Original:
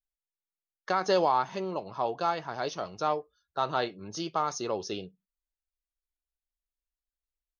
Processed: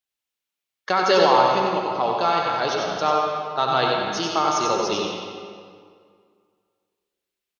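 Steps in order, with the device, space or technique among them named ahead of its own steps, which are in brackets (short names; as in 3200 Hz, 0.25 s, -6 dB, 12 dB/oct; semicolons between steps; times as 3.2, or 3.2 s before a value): PA in a hall (HPF 110 Hz; bell 3000 Hz +6 dB 1.2 oct; echo 93 ms -5 dB; reverb RT60 2.1 s, pre-delay 66 ms, DRR 1 dB); gain +5.5 dB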